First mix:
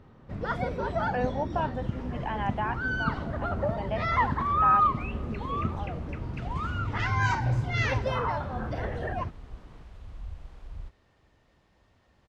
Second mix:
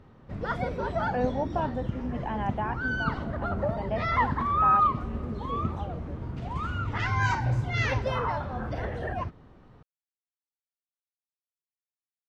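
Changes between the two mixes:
speech: add tilt shelf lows +5.5 dB, about 760 Hz; second sound: muted

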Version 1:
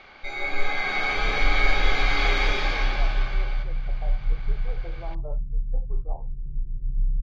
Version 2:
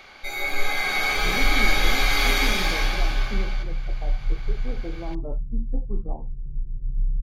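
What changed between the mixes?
speech: remove HPF 480 Hz 24 dB/oct; master: remove air absorption 180 m

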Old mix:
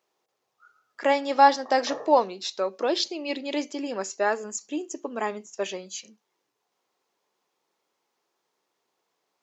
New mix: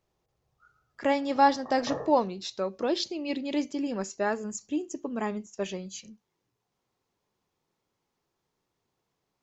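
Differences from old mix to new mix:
speech -5.0 dB; master: remove HPF 400 Hz 12 dB/oct

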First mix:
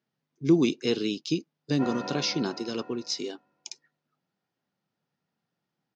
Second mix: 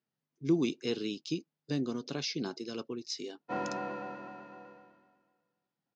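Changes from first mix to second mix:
speech -7.0 dB; background: entry +1.70 s

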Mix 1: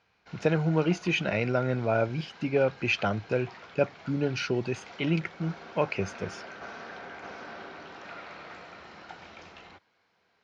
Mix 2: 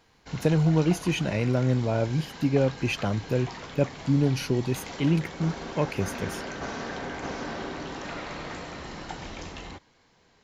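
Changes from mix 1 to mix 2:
background +9.5 dB; master: remove speaker cabinet 110–5600 Hz, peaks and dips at 140 Hz -8 dB, 270 Hz -7 dB, 700 Hz +4 dB, 1400 Hz +8 dB, 2400 Hz +5 dB

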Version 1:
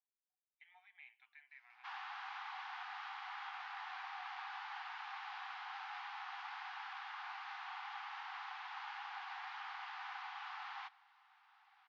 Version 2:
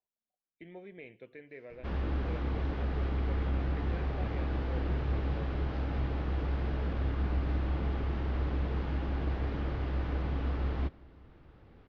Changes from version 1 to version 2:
speech +5.0 dB; master: remove brick-wall FIR high-pass 730 Hz

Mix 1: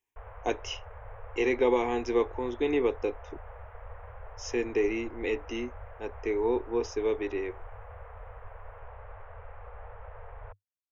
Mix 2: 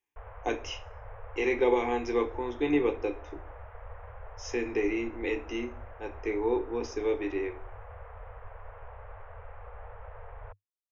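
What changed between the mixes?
speech -6.5 dB; reverb: on, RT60 0.40 s

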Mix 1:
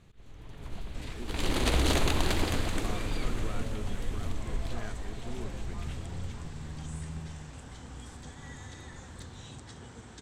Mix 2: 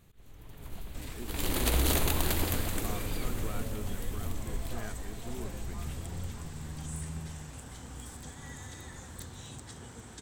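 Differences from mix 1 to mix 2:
first sound -3.0 dB; master: remove LPF 6200 Hz 12 dB/oct

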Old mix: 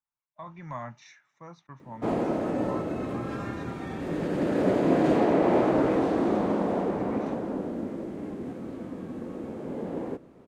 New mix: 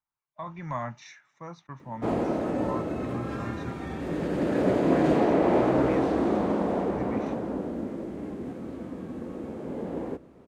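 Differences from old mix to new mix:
speech +4.5 dB; master: add bell 68 Hz +10 dB 0.25 oct

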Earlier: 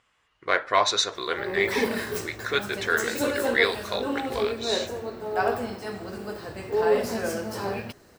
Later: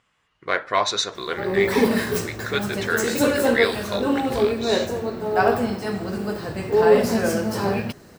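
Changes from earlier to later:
background +5.5 dB; master: add bell 170 Hz +7 dB 1.2 oct

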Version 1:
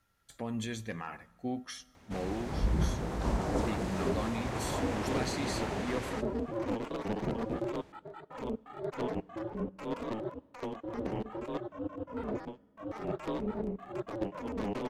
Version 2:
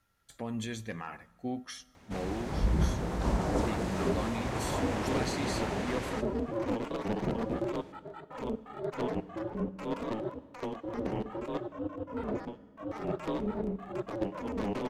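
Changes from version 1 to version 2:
first sound: send +9.5 dB; second sound: send +9.5 dB

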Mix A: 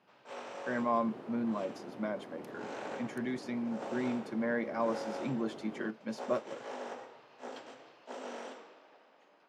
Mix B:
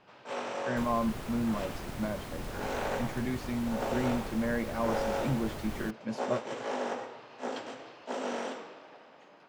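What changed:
first sound +8.0 dB; second sound: remove band-pass 340 Hz, Q 0.76; master: remove HPF 230 Hz 12 dB/oct

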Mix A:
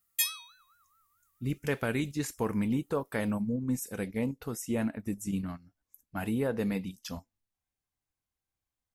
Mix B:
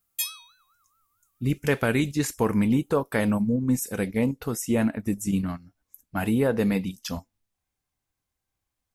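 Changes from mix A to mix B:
speech +7.5 dB; background: add bell 1900 Hz -11.5 dB 0.27 oct

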